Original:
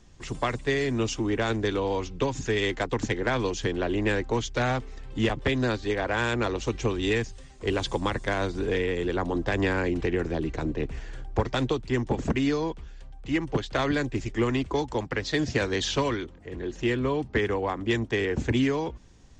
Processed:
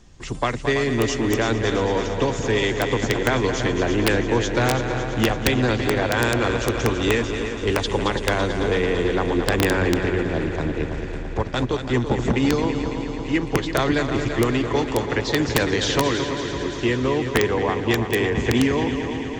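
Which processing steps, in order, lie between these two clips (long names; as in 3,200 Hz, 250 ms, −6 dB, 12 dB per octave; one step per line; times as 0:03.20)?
0:09.97–0:11.89: transient designer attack −5 dB, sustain −9 dB
echo machine with several playback heads 111 ms, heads second and third, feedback 70%, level −9 dB
wrap-around overflow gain 13.5 dB
level +4.5 dB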